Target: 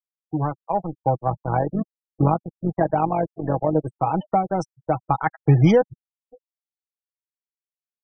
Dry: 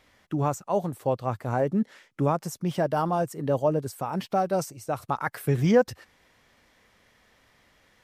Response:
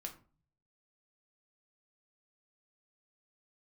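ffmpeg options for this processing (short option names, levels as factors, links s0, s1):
-filter_complex "[0:a]equalizer=f=125:t=o:w=0.33:g=6,equalizer=f=315:t=o:w=0.33:g=4,equalizer=f=800:t=o:w=0.33:g=9,dynaudnorm=f=210:g=11:m=2.66,asplit=2[s0][s1];[s1]adelay=567,lowpass=f=2300:p=1,volume=0.0708,asplit=2[s2][s3];[s3]adelay=567,lowpass=f=2300:p=1,volume=0.52,asplit=2[s4][s5];[s5]adelay=567,lowpass=f=2300:p=1,volume=0.52[s6];[s0][s2][s4][s6]amix=inputs=4:normalize=0,adynamicequalizer=threshold=0.0251:dfrequency=160:dqfactor=1.6:tfrequency=160:tqfactor=1.6:attack=5:release=100:ratio=0.375:range=2.5:mode=cutabove:tftype=bell,asplit=3[s7][s8][s9];[s7]afade=t=out:st=1.26:d=0.02[s10];[s8]tremolo=f=48:d=0.571,afade=t=in:st=1.26:d=0.02,afade=t=out:st=3.74:d=0.02[s11];[s9]afade=t=in:st=3.74:d=0.02[s12];[s10][s11][s12]amix=inputs=3:normalize=0,aeval=exprs='sgn(val(0))*max(abs(val(0))-0.0282,0)':c=same,acrossover=split=310|3000[s13][s14][s15];[s14]acompressor=threshold=0.112:ratio=5[s16];[s13][s16][s15]amix=inputs=3:normalize=0,afftfilt=real='re*gte(hypot(re,im),0.0398)':imag='im*gte(hypot(re,im),0.0398)':win_size=1024:overlap=0.75,aecho=1:1:6.2:0.47"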